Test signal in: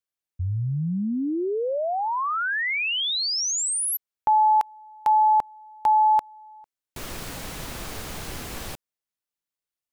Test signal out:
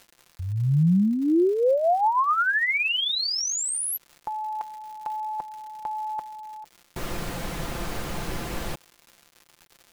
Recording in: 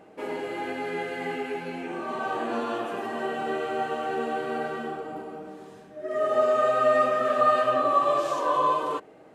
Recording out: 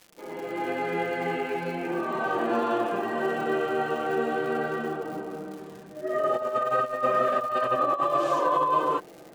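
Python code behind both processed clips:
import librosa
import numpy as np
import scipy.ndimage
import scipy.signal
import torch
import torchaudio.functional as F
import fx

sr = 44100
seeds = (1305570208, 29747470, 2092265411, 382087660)

y = fx.fade_in_head(x, sr, length_s=0.77)
y = fx.high_shelf(y, sr, hz=2500.0, db=-8.0)
y = fx.over_compress(y, sr, threshold_db=-25.0, ratio=-0.5)
y = fx.dmg_crackle(y, sr, seeds[0], per_s=160.0, level_db=-40.0)
y = y + 0.4 * np.pad(y, (int(5.8 * sr / 1000.0), 0))[:len(y)]
y = F.gain(torch.from_numpy(y), 2.0).numpy()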